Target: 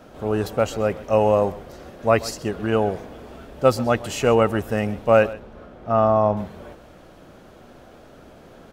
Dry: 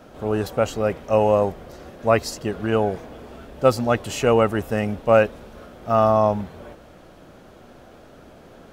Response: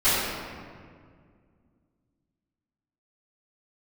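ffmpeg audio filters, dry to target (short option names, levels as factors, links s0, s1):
-filter_complex "[0:a]asettb=1/sr,asplit=3[s0][s1][s2];[s0]atrim=end=5.334[s3];[s1]atrim=start=5.33:end=6.37,asetpts=PTS-STARTPTS,afade=t=in:d=0.004:c=qsin,afade=t=out:st=1.036:d=0.004:c=qsin,lowpass=f=1800:p=1[s4];[s2]atrim=start=6.366[s5];[s3][s4]acrossfade=d=0.004:c1=hsin:c2=qsin[s6];[s6][s5]acrossfade=d=0.004:c1=qsin:c2=hsin,aecho=1:1:131:0.119"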